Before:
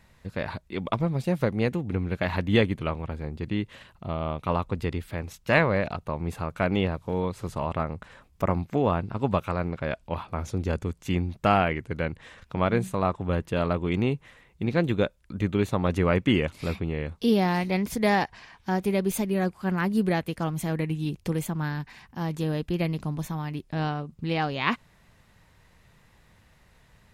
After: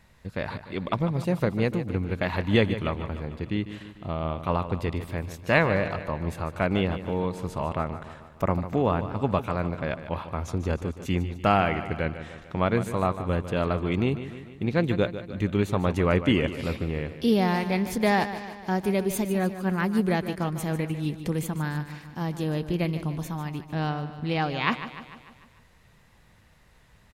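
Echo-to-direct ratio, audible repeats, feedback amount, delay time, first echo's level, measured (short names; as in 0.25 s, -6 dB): -10.5 dB, 5, 56%, 0.149 s, -12.0 dB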